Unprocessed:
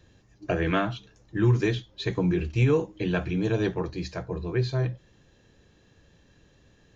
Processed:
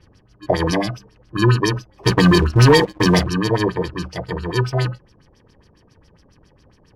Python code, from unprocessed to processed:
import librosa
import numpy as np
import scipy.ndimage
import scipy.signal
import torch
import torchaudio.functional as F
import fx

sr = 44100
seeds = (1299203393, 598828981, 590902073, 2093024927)

y = fx.bit_reversed(x, sr, seeds[0], block=32)
y = fx.filter_lfo_lowpass(y, sr, shape='sine', hz=7.3, low_hz=570.0, high_hz=5700.0, q=3.0)
y = fx.leveller(y, sr, passes=2, at=(2.03, 3.27))
y = y * librosa.db_to_amplitude(6.0)